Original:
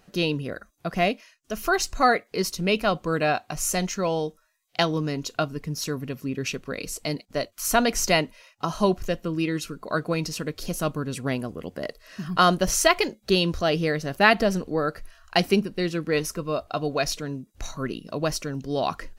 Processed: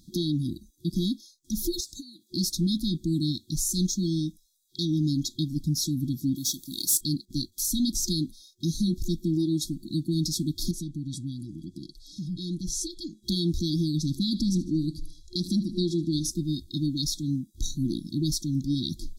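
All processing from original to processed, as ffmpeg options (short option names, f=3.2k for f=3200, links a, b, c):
-filter_complex "[0:a]asettb=1/sr,asplit=3[a][b][c];[a]atrim=end=1.804[d];[b]atrim=start=1.8:end=2.3,asetpts=PTS-STARTPTS,afade=t=in:d=0.004:c=qsin,afade=t=out:st=0.496:d=0.004:c=qsin,highpass=f=550:p=1,acompressor=threshold=-34dB:ratio=10:attack=3.2:release=140:knee=1:detection=peak[e];[c]atrim=start=2.296[f];[d][e]acrossfade=d=0.004:c1=hsin:c2=qsin[g];[g][f]acrossfade=d=0.004:c1=qsin:c2=hsin,asettb=1/sr,asplit=3[h][i][j];[h]atrim=end=6.364[k];[i]atrim=start=6.36:end=7.01,asetpts=PTS-STARTPTS,afade=t=in:d=0.004:c=qsin,afade=t=out:st=0.646:d=0.004:c=qsin,aemphasis=mode=production:type=riaa,asoftclip=type=hard:threshold=-21dB[l];[j]atrim=start=7.006[m];[k][l]acrossfade=d=0.004:c1=hsin:c2=qsin[n];[n][m]acrossfade=d=0.004:c1=qsin:c2=hsin,asettb=1/sr,asplit=3[o][p][q];[o]atrim=end=10.714[r];[p]atrim=start=10.71:end=13.24,asetpts=PTS-STARTPTS,afade=t=in:d=0.004:c=qsin,afade=t=out:st=2.526:d=0.004:c=qsin,lowpass=8.8k,aecho=1:1:6.3:0.4,atrim=end_sample=111573,acompressor=threshold=-42dB:ratio=2:attack=3.2:release=140:knee=1:detection=peak[s];[q]atrim=start=13.236[t];[r][s]acrossfade=d=0.004:c1=hsin:c2=qsin[u];[u][t]acrossfade=d=0.004:c1=qsin:c2=hsin,asettb=1/sr,asplit=3[v][w][x];[v]atrim=end=13.974[y];[w]atrim=start=13.97:end=16.31,asetpts=PTS-STARTPTS,afade=t=in:d=0.004:c=qsin,afade=t=out:st=2.336:d=0.004:c=qsin,lowpass=9.6k,aecho=1:1:76|152|228|304:0.126|0.0604|0.029|0.0139,atrim=end_sample=103194[z];[x]atrim=start=16.306[aa];[y][z]acrossfade=d=0.004:c1=hsin:c2=qsin[ab];[ab][aa]acrossfade=d=0.004:c1=qsin:c2=hsin,afftfilt=real='re*(1-between(b*sr/4096,360,3300))':imag='im*(1-between(b*sr/4096,360,3300))':win_size=4096:overlap=0.75,acontrast=31,alimiter=limit=-18dB:level=0:latency=1:release=175"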